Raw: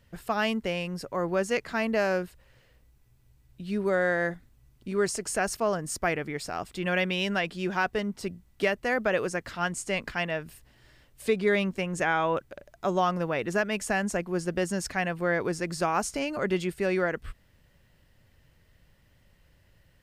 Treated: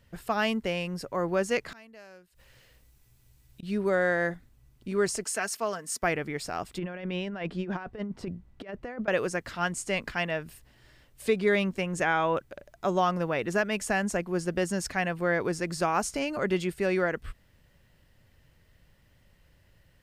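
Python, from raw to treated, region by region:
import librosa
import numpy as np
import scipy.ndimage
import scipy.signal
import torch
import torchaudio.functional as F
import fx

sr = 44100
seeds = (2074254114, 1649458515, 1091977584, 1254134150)

y = fx.chain(x, sr, fx.high_shelf(hz=2500.0, db=9.0),
    fx.gate_flip(shuts_db=-31.0, range_db=-25), at=(1.72, 3.63))
y = fx.chain(y, sr, fx.highpass(hz=310.0, slope=12),
    fx.peak_eq(hz=510.0, db=-6.5, octaves=2.0),
    fx.comb(ms=4.5, depth=0.43), at=(5.24, 6.03))
y = fx.chain(y, sr, fx.lowpass(hz=1200.0, slope=6),
    fx.over_compress(threshold_db=-33.0, ratio=-0.5), at=(6.78, 9.08))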